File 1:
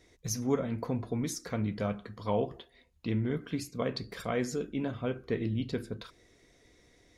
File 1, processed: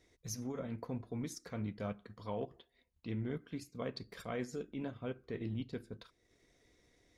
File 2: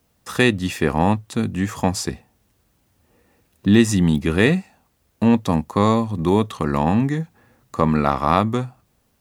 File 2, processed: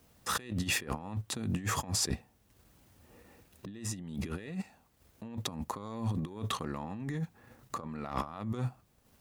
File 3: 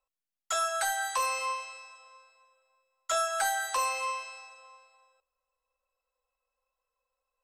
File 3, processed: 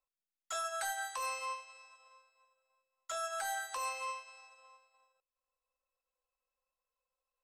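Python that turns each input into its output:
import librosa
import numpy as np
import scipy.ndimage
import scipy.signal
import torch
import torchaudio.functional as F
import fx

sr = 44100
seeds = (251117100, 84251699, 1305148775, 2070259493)

y = fx.over_compress(x, sr, threshold_db=-29.0, ratio=-1.0)
y = fx.transient(y, sr, attack_db=-3, sustain_db=-7)
y = y * librosa.db_to_amplitude(-7.0)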